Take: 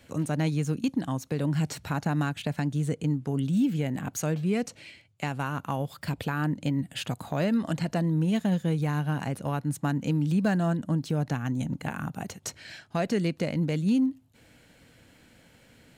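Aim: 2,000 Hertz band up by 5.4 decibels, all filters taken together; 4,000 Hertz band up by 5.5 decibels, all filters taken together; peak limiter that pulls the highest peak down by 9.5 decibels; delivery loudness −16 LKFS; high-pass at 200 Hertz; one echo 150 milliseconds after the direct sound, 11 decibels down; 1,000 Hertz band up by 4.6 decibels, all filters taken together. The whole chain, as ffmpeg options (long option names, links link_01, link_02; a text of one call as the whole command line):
ffmpeg -i in.wav -af "highpass=200,equalizer=frequency=1000:width_type=o:gain=5,equalizer=frequency=2000:width_type=o:gain=4,equalizer=frequency=4000:width_type=o:gain=5.5,alimiter=limit=-19dB:level=0:latency=1,aecho=1:1:150:0.282,volume=15dB" out.wav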